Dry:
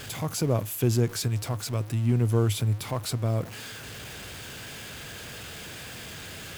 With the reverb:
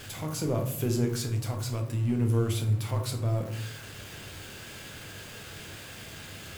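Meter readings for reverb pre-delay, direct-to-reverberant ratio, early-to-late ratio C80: 9 ms, 2.5 dB, 12.0 dB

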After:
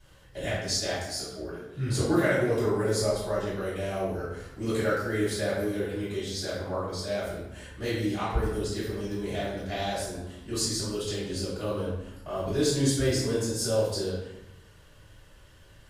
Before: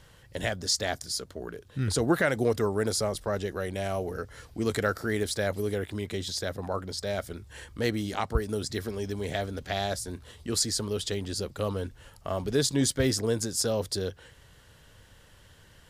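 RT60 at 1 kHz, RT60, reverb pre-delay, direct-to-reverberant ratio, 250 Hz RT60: 0.90 s, 0.90 s, 3 ms, -14.0 dB, 1.1 s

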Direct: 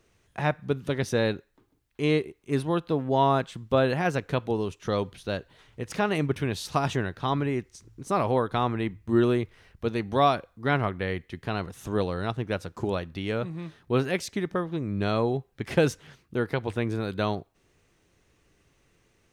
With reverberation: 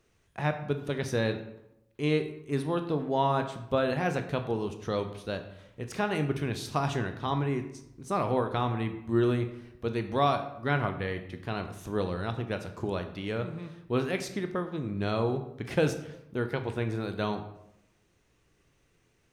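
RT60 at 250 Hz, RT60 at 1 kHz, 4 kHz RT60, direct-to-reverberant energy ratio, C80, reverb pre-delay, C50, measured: 1.0 s, 0.85 s, 0.55 s, 7.0 dB, 12.5 dB, 17 ms, 10.5 dB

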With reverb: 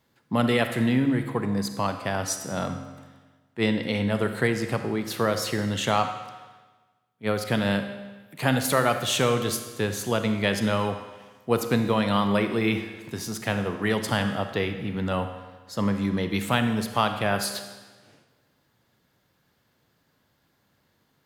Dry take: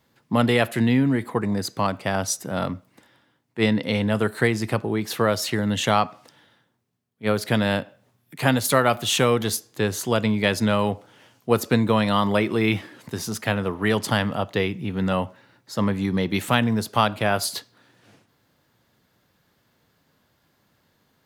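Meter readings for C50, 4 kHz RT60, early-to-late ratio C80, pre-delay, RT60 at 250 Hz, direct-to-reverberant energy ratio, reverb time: 8.5 dB, 1.2 s, 10.0 dB, 35 ms, 1.3 s, 7.5 dB, 1.3 s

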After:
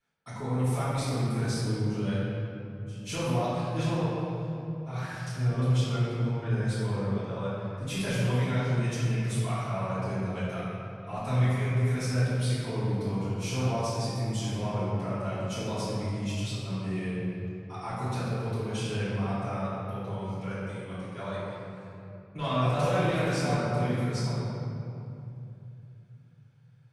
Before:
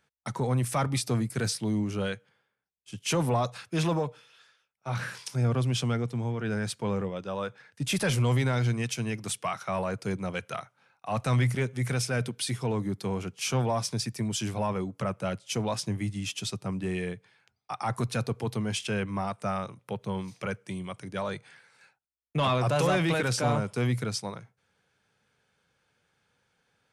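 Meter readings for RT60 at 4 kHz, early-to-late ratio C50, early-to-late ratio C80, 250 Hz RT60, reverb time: 1.6 s, -4.5 dB, -2.0 dB, 3.7 s, 2.8 s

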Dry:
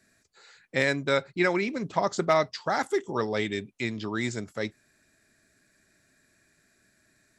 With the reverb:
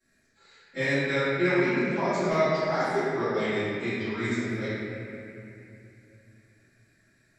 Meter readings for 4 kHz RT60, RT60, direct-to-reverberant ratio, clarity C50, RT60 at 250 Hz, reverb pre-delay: 2.2 s, 2.7 s, -21.0 dB, -5.5 dB, 3.5 s, 3 ms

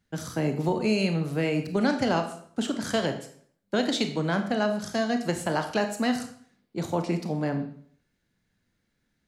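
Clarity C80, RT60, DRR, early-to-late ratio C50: 12.5 dB, 0.55 s, 6.0 dB, 10.0 dB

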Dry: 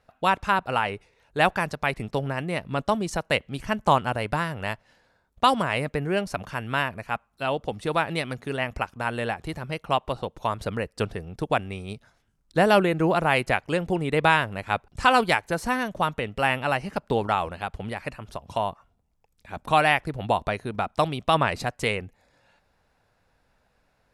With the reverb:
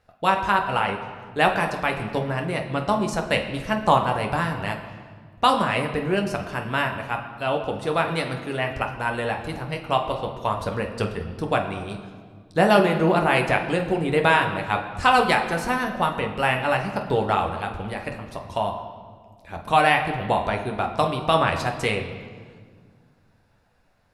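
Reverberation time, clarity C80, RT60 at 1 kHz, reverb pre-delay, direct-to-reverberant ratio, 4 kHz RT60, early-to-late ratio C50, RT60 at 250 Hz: 1.8 s, 9.5 dB, 1.6 s, 11 ms, 2.5 dB, 1.3 s, 8.0 dB, 2.7 s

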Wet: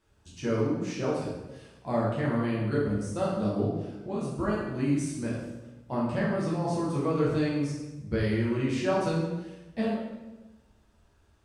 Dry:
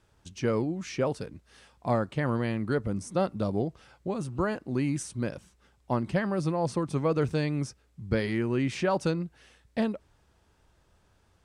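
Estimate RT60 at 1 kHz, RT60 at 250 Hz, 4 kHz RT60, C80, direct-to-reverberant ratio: 1.0 s, 1.3 s, 0.90 s, 4.0 dB, -6.5 dB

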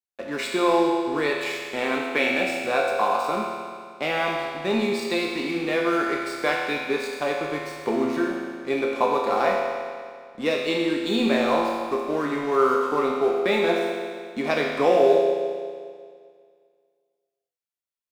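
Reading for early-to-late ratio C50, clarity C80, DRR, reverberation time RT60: 0.5 dB, 2.0 dB, -2.5 dB, 2.0 s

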